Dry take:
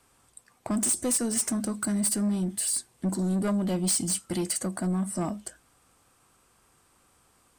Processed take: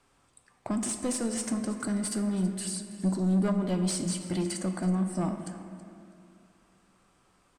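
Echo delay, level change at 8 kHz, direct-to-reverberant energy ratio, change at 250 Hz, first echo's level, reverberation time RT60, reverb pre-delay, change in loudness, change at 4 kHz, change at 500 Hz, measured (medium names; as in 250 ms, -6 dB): 325 ms, -8.0 dB, 5.5 dB, 0.0 dB, -17.0 dB, 2.5 s, 3 ms, -2.5 dB, -3.0 dB, -0.5 dB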